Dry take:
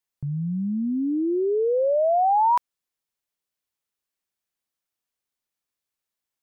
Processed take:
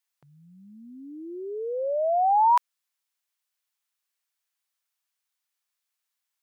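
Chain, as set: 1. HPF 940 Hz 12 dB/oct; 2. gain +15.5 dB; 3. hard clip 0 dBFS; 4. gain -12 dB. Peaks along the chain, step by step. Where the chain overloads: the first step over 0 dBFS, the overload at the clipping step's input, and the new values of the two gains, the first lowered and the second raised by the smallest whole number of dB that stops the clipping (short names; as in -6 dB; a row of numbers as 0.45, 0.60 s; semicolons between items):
-17.5, -2.0, -2.0, -14.0 dBFS; no overload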